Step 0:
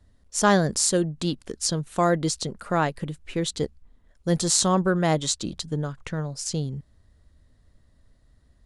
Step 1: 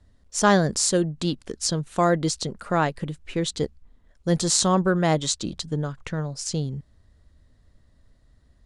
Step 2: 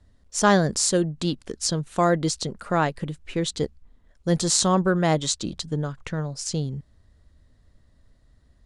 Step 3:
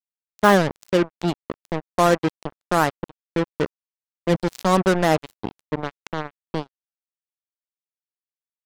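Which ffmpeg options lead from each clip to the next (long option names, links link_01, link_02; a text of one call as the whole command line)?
ffmpeg -i in.wav -af "lowpass=9300,volume=1dB" out.wav
ffmpeg -i in.wav -af anull out.wav
ffmpeg -i in.wav -filter_complex "[0:a]acrossover=split=150 3100:gain=0.0708 1 0.1[link_01][link_02][link_03];[link_01][link_02][link_03]amix=inputs=3:normalize=0,acrusher=bits=3:mix=0:aa=0.5,volume=3.5dB" out.wav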